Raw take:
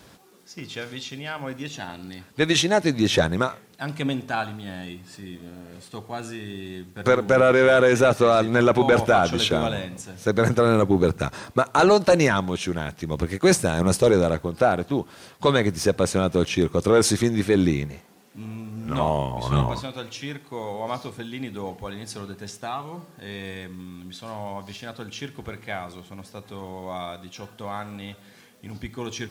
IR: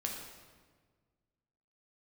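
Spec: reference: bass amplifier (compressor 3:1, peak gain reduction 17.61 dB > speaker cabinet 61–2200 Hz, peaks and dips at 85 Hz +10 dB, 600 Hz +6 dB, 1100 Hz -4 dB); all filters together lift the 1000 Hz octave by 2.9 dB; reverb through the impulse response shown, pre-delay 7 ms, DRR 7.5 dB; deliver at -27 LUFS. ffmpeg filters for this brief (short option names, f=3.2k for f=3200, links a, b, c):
-filter_complex "[0:a]equalizer=f=1k:t=o:g=4.5,asplit=2[a][b];[1:a]atrim=start_sample=2205,adelay=7[c];[b][c]afir=irnorm=-1:irlink=0,volume=-9dB[d];[a][d]amix=inputs=2:normalize=0,acompressor=threshold=-34dB:ratio=3,highpass=f=61:w=0.5412,highpass=f=61:w=1.3066,equalizer=f=85:t=q:w=4:g=10,equalizer=f=600:t=q:w=4:g=6,equalizer=f=1.1k:t=q:w=4:g=-4,lowpass=f=2.2k:w=0.5412,lowpass=f=2.2k:w=1.3066,volume=7.5dB"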